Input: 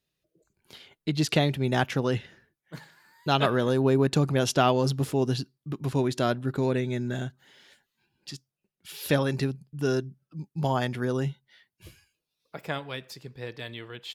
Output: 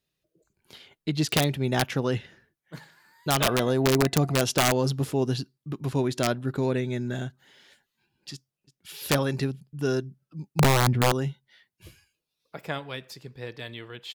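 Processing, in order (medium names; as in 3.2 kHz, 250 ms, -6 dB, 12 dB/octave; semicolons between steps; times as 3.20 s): 3.46–4.42 s: small resonant body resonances 700/2000 Hz, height 15 dB, ringing for 95 ms; 10.59–11.12 s: RIAA curve playback; integer overflow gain 13.5 dB; 8.33–8.92 s: echo throw 340 ms, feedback 40%, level -17.5 dB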